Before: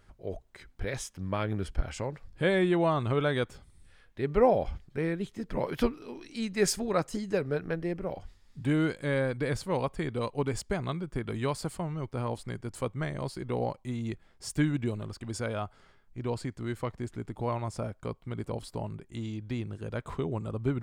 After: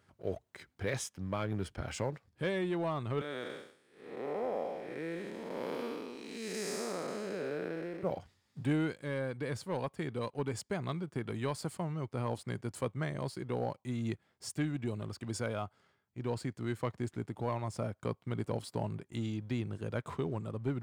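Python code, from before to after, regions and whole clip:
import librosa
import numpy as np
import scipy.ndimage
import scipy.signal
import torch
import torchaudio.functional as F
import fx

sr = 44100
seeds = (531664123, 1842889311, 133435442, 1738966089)

y = fx.chain(x, sr, fx.spec_blur(span_ms=367.0),
    fx.highpass(hz=300.0, slope=12), at=(3.21, 8.03))
y = scipy.signal.sosfilt(scipy.signal.butter(4, 86.0, 'highpass', fs=sr, output='sos'), y)
y = fx.leveller(y, sr, passes=1)
y = fx.rider(y, sr, range_db=4, speed_s=0.5)
y = y * 10.0 ** (-7.0 / 20.0)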